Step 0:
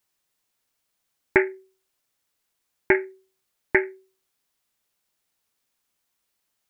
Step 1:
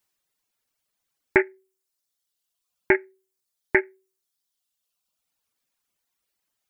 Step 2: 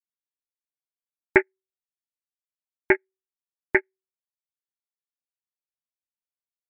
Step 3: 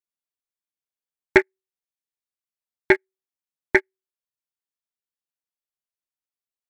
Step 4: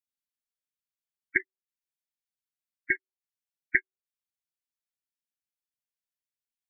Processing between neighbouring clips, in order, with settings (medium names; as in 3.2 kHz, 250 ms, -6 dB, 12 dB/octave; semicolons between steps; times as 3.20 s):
reverb removal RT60 1.3 s
upward expansion 2.5:1, over -34 dBFS; trim +2.5 dB
waveshaping leveller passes 1
spectral gate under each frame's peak -15 dB strong; inverse Chebyshev band-stop 420–990 Hz, stop band 40 dB; trim -3.5 dB